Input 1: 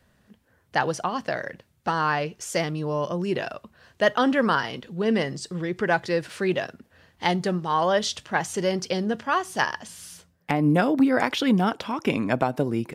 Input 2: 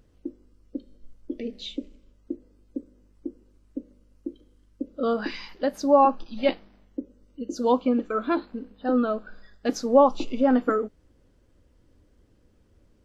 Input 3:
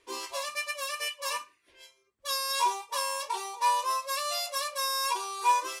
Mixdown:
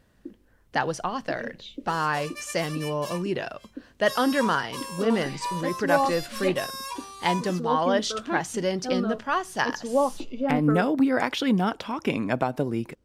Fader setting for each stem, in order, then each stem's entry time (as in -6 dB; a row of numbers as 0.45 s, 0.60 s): -2.0 dB, -6.0 dB, -6.0 dB; 0.00 s, 0.00 s, 1.80 s